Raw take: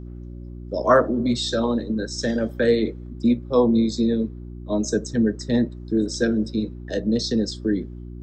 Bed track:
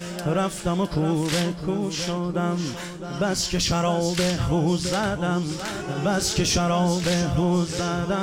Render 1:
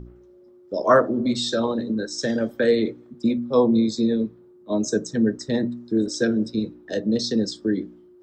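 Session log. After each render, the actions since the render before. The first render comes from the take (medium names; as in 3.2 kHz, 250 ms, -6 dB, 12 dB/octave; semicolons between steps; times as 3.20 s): de-hum 60 Hz, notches 5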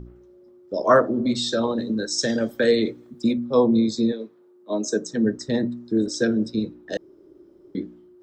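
1.78–3.33 s: treble shelf 3.6 kHz +8.5 dB; 4.11–5.24 s: high-pass 560 Hz -> 170 Hz; 6.97–7.75 s: room tone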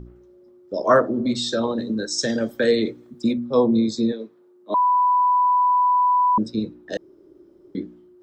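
4.74–6.38 s: bleep 992 Hz -14.5 dBFS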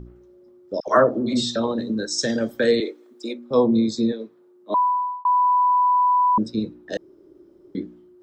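0.80–1.56 s: phase dispersion lows, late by 75 ms, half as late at 1.2 kHz; 2.80–3.51 s: Chebyshev high-pass 360 Hz, order 3; 4.78–5.25 s: fade out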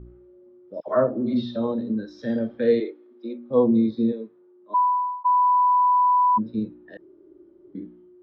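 harmonic-percussive split percussive -16 dB; Bessel low-pass 2.4 kHz, order 8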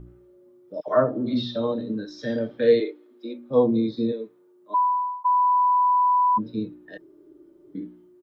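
treble shelf 3.4 kHz +11 dB; comb 6.7 ms, depth 39%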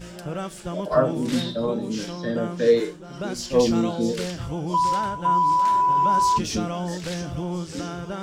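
add bed track -7.5 dB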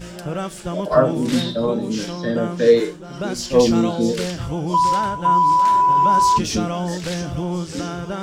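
trim +4.5 dB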